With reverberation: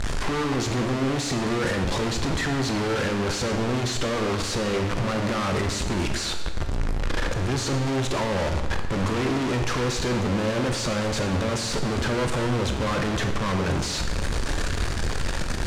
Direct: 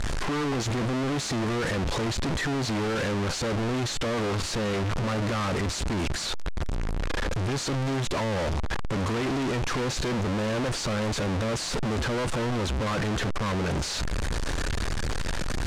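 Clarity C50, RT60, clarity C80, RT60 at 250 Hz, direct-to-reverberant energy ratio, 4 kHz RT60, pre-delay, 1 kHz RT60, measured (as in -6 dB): 7.0 dB, 1.2 s, 9.0 dB, 1.4 s, 5.0 dB, 1.1 s, 15 ms, 1.2 s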